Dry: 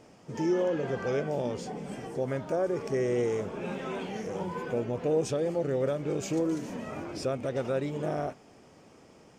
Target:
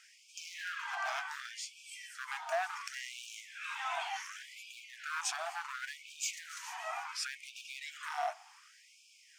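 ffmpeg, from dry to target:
ffmpeg -i in.wav -af "asoftclip=type=hard:threshold=-27.5dB,afftfilt=real='re*gte(b*sr/1024,640*pow(2300/640,0.5+0.5*sin(2*PI*0.69*pts/sr)))':imag='im*gte(b*sr/1024,640*pow(2300/640,0.5+0.5*sin(2*PI*0.69*pts/sr)))':win_size=1024:overlap=0.75,volume=4.5dB" out.wav

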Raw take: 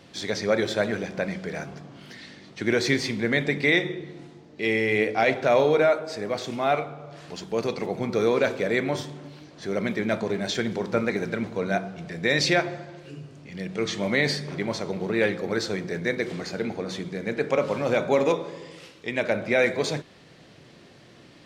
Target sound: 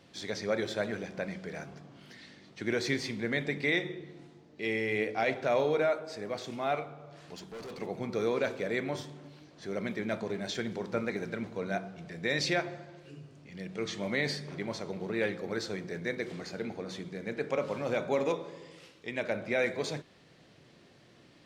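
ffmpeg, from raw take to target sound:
ffmpeg -i in.wav -filter_complex "[0:a]asettb=1/sr,asplit=3[link_01][link_02][link_03];[link_01]atrim=end=7.364[link_04];[link_02]atrim=start=7.36:end=7.81,asetpts=PTS-STARTPTS,afade=type=in:duration=0.004:curve=qsin,afade=type=out:start_time=0.446:duration=0.004:curve=qsin,volume=32.5dB,asoftclip=hard,volume=-32.5dB[link_05];[link_03]atrim=start=7.806[link_06];[link_04][link_05]acrossfade=duration=0.004:curve1=hsin:curve2=qsin[link_07];[link_07][link_06]acrossfade=duration=0.004:curve1=qsin:curve2=hsin,volume=-8dB" out.wav

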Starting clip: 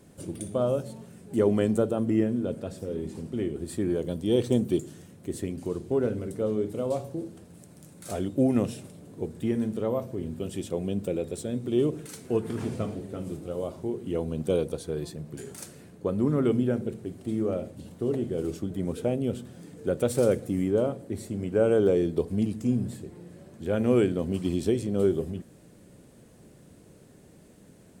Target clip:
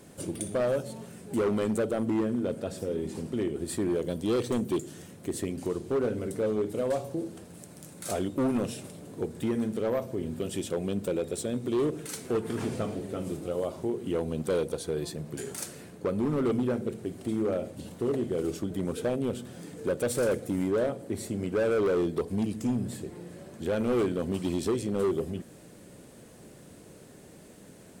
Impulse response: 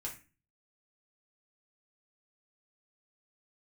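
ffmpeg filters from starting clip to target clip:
-filter_complex "[0:a]lowshelf=frequency=260:gain=-7,asplit=2[link_01][link_02];[link_02]acompressor=threshold=-37dB:ratio=6,volume=0dB[link_03];[link_01][link_03]amix=inputs=2:normalize=0,asoftclip=type=hard:threshold=-22.5dB"

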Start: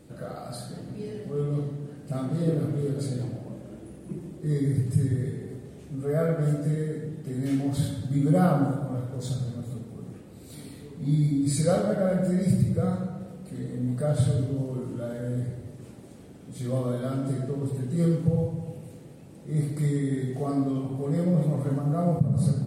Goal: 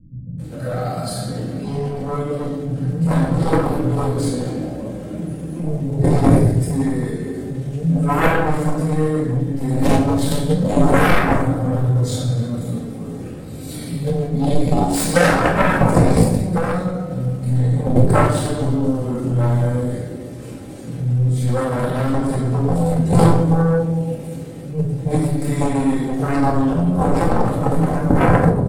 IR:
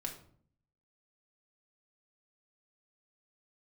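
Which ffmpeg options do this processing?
-filter_complex "[0:a]acontrast=54,acrossover=split=180[link_01][link_02];[link_02]adelay=320[link_03];[link_01][link_03]amix=inputs=2:normalize=0,aeval=exprs='0.531*(cos(1*acos(clip(val(0)/0.531,-1,1)))-cos(1*PI/2))+0.00944*(cos(5*acos(clip(val(0)/0.531,-1,1)))-cos(5*PI/2))+0.188*(cos(7*acos(clip(val(0)/0.531,-1,1)))-cos(7*PI/2))':channel_layout=same,atempo=0.79[link_04];[1:a]atrim=start_sample=2205[link_05];[link_04][link_05]afir=irnorm=-1:irlink=0,alimiter=level_in=6.5dB:limit=-1dB:release=50:level=0:latency=1,volume=-1dB"

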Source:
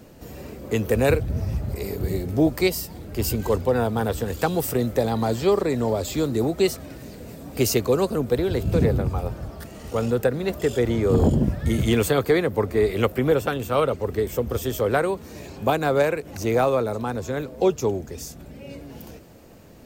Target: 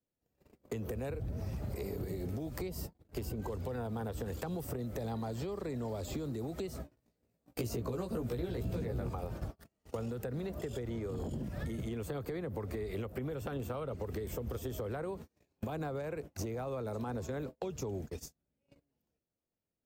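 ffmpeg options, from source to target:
ffmpeg -i in.wav -filter_complex "[0:a]agate=range=-47dB:threshold=-32dB:ratio=16:detection=peak,acrossover=split=180|1300[link_01][link_02][link_03];[link_01]acompressor=threshold=-28dB:ratio=4[link_04];[link_02]acompressor=threshold=-27dB:ratio=4[link_05];[link_03]acompressor=threshold=-44dB:ratio=4[link_06];[link_04][link_05][link_06]amix=inputs=3:normalize=0,alimiter=level_in=0.5dB:limit=-24dB:level=0:latency=1:release=137,volume=-0.5dB,acompressor=threshold=-38dB:ratio=6,asettb=1/sr,asplit=3[link_07][link_08][link_09];[link_07]atrim=end=6.734[link_10];[link_08]atrim=start=6.73:end=9.14,asetpts=PTS-STARTPTS,afade=type=in:duration=0.004:curve=qsin,afade=type=out:start_time=2.406:duration=0.004:curve=qsin,asplit=2[link_11][link_12];[link_12]adelay=17,volume=-2.5dB[link_13];[link_11][link_13]amix=inputs=2:normalize=0,atrim=end_sample=106281[link_14];[link_09]atrim=start=9.136[link_15];[link_10][link_14]acrossfade=duration=0.004:curve1=hsin:curve2=qsin[link_16];[link_16][link_15]acrossfade=duration=0.004:curve1=qsin:curve2=hsin,volume=2.5dB" out.wav

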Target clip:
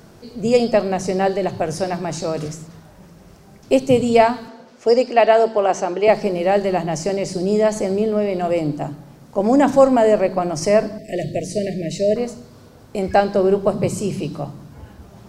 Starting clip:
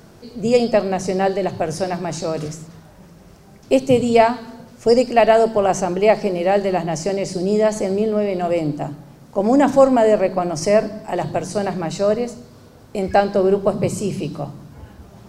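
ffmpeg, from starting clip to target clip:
ffmpeg -i in.wav -filter_complex "[0:a]asettb=1/sr,asplit=3[link_01][link_02][link_03];[link_01]atrim=end=4.484[link_04];[link_02]atrim=start=4.48:end=6.08,asetpts=PTS-STARTPTS,afade=type=in:duration=0.004:curve=qsin,afade=type=out:start_time=1.596:duration=0.004:curve=qsin,acrossover=split=230 6600:gain=0.1 1 0.2[link_05][link_06][link_07];[link_05][link_06][link_07]amix=inputs=3:normalize=0[link_08];[link_03]atrim=start=6.076[link_09];[link_04][link_08]acrossfade=duration=0.004:curve1=hsin:curve2=qsin[link_10];[link_10][link_09]acrossfade=duration=0.004:curve1=qsin:curve2=hsin,asettb=1/sr,asplit=3[link_11][link_12][link_13];[link_11]atrim=end=10.984[link_14];[link_12]atrim=start=10.98:end=12.16,asetpts=PTS-STARTPTS,afade=type=in:duration=0.004:curve=qsin,afade=type=out:start_time=1.176:duration=0.004:curve=qsin,asuperstop=centerf=1100:order=20:qfactor=1[link_15];[link_13]atrim=start=12.156[link_16];[link_14][link_15]acrossfade=duration=0.004:curve1=hsin:curve2=qsin[link_17];[link_17][link_16]acrossfade=duration=0.004:curve1=qsin:curve2=hsin" out.wav

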